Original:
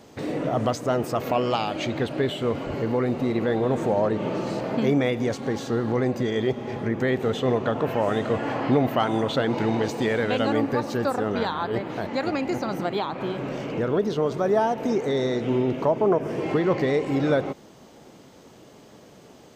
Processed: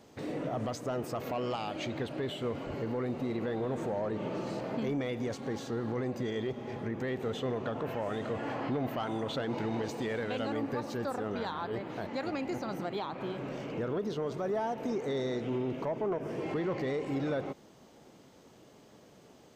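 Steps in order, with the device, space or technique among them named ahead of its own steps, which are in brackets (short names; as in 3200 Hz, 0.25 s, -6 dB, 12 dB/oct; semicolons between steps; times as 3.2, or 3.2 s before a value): soft clipper into limiter (soft clip -13.5 dBFS, distortion -22 dB; limiter -18 dBFS, peak gain reduction 3.5 dB); gain -8 dB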